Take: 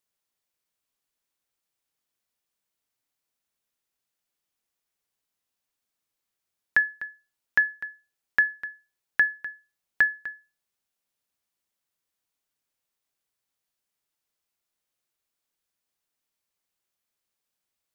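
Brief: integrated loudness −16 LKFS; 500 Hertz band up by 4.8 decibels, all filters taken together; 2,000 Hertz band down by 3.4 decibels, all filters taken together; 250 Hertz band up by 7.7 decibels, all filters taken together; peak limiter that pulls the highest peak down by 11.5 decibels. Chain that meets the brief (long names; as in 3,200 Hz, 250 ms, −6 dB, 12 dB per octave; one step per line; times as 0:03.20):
parametric band 250 Hz +8.5 dB
parametric band 500 Hz +4 dB
parametric band 2,000 Hz −4.5 dB
level +18.5 dB
brickwall limiter −3.5 dBFS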